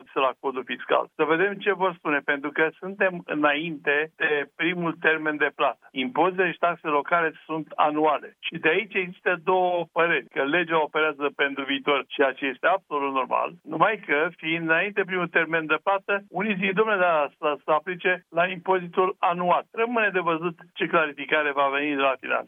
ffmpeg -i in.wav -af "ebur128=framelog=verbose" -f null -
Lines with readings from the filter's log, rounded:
Integrated loudness:
  I:         -24.2 LUFS
  Threshold: -34.2 LUFS
Loudness range:
  LRA:         0.9 LU
  Threshold: -44.2 LUFS
  LRA low:   -24.6 LUFS
  LRA high:  -23.7 LUFS